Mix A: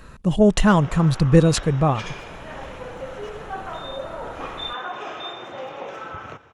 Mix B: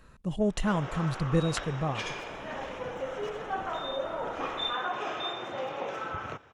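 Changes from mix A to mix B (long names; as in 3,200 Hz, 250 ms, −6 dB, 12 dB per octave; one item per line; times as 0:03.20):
speech −12.0 dB
background: send −6.5 dB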